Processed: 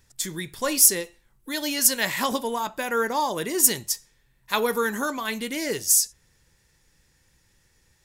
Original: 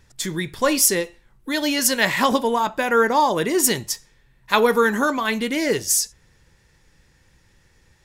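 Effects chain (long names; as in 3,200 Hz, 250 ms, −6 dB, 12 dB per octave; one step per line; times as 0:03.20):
high-shelf EQ 5,700 Hz +12 dB
level −7.5 dB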